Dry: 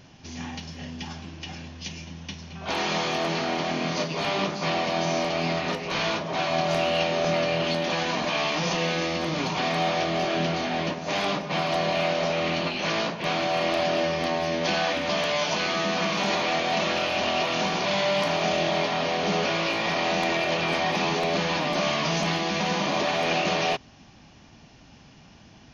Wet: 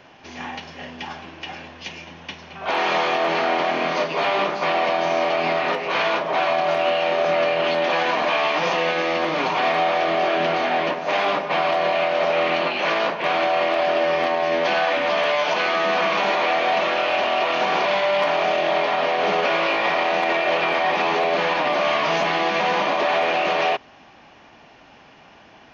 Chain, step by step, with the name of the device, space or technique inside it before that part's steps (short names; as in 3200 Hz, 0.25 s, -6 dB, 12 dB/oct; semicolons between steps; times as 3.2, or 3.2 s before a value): DJ mixer with the lows and highs turned down (three-band isolator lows -17 dB, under 360 Hz, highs -16 dB, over 3000 Hz; limiter -20.5 dBFS, peak gain reduction 7 dB); gain +9 dB